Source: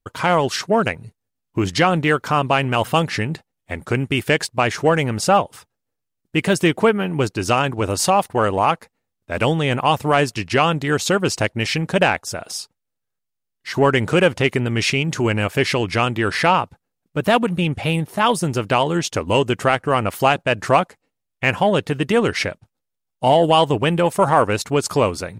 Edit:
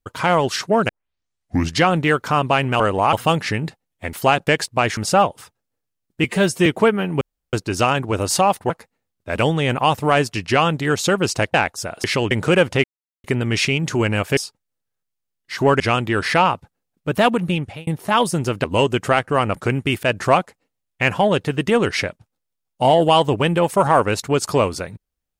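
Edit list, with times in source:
0:00.89: tape start 0.88 s
0:03.80–0:04.28: swap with 0:20.11–0:20.45
0:04.78–0:05.12: remove
0:06.39–0:06.67: time-stretch 1.5×
0:07.22: splice in room tone 0.32 s
0:08.39–0:08.72: move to 0:02.80
0:11.56–0:12.03: remove
0:12.53–0:13.96: swap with 0:15.62–0:15.89
0:14.49: splice in silence 0.40 s
0:17.58–0:17.96: fade out
0:18.73–0:19.20: remove

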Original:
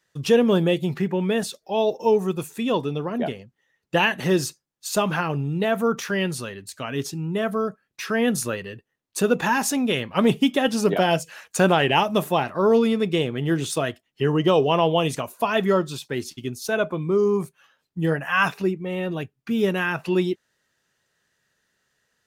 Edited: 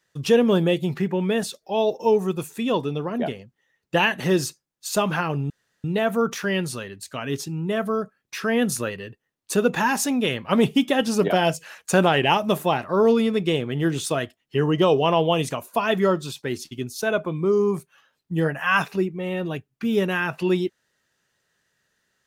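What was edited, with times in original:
0:05.50: splice in room tone 0.34 s

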